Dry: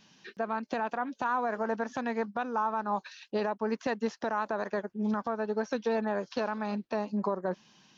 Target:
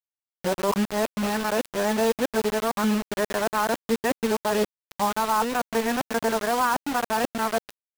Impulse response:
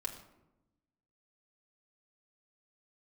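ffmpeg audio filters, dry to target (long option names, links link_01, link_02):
-af "areverse,aresample=8000,aresample=44100,acrusher=bits=5:mix=0:aa=0.000001,volume=6.5dB"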